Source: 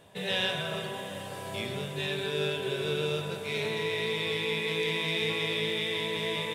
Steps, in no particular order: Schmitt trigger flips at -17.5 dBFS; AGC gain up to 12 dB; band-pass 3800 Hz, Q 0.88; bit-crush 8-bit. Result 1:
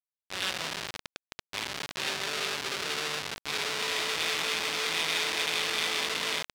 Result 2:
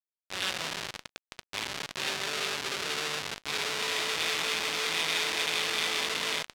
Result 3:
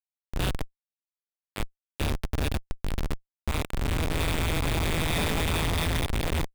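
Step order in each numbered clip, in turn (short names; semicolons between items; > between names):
AGC > Schmitt trigger > band-pass > bit-crush; AGC > Schmitt trigger > bit-crush > band-pass; band-pass > bit-crush > AGC > Schmitt trigger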